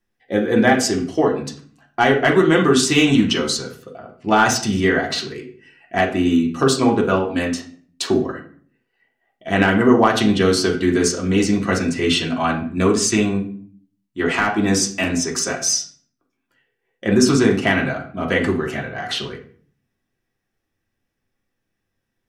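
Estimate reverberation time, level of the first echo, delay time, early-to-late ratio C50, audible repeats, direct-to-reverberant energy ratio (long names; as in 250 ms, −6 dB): 0.50 s, no echo audible, no echo audible, 9.0 dB, no echo audible, −1.5 dB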